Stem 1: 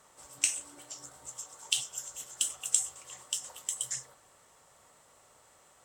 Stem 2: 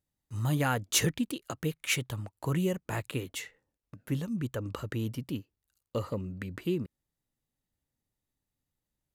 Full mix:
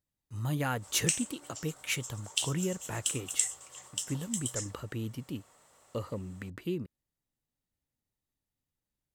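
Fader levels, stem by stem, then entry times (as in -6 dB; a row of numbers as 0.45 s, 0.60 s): -1.5 dB, -3.5 dB; 0.65 s, 0.00 s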